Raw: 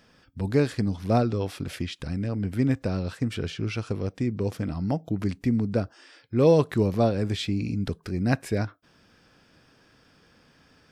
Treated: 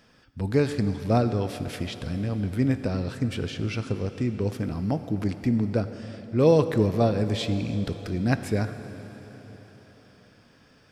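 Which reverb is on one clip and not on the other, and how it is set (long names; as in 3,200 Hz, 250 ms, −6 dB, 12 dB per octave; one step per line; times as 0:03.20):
dense smooth reverb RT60 4.5 s, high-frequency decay 0.85×, DRR 9.5 dB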